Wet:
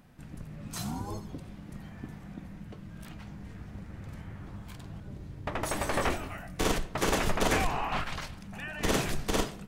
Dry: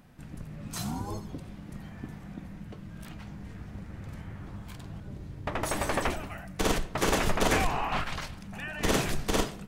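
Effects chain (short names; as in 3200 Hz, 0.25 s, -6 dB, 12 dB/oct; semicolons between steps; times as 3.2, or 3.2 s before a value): 5.91–6.68 doubler 23 ms -3 dB; gain -1.5 dB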